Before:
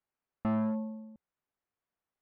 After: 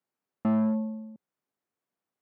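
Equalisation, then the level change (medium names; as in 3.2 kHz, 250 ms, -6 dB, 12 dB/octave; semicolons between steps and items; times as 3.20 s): high-pass 180 Hz 12 dB/octave; bass shelf 460 Hz +9 dB; 0.0 dB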